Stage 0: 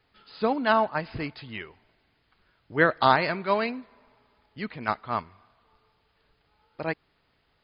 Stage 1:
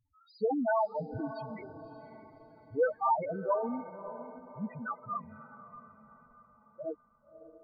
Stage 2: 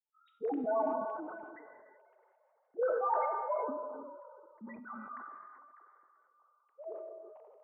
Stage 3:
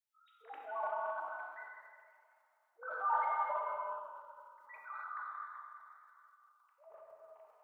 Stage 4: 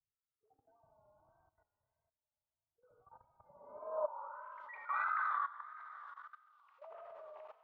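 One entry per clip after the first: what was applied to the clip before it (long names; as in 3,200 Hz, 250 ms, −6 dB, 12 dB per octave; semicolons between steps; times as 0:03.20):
parametric band 3,600 Hz +3 dB 0.38 octaves; spectral peaks only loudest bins 2; feedback delay with all-pass diffusion 585 ms, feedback 42%, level −12.5 dB
three sine waves on the formant tracks; reverb whose tail is shaped and stops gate 410 ms flat, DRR 5.5 dB; level that may fall only so fast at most 28 dB per second; level −6.5 dB
inverse Chebyshev high-pass filter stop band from 210 Hz, stop band 70 dB; transient designer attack −2 dB, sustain +10 dB; reverb whose tail is shaped and stops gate 290 ms flat, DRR 1 dB
pitch vibrato 1.6 Hz 80 cents; output level in coarse steps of 16 dB; low-pass filter sweep 110 Hz → 3,300 Hz, 0:03.38–0:04.63; level +11.5 dB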